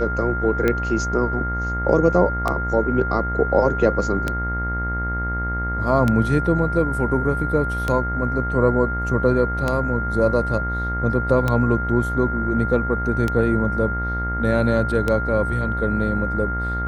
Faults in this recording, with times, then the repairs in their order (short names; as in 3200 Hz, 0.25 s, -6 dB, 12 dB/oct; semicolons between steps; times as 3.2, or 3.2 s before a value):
buzz 60 Hz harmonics 36 -26 dBFS
tick 33 1/3 rpm -8 dBFS
tone 1400 Hz -25 dBFS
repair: de-click; de-hum 60 Hz, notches 36; notch 1400 Hz, Q 30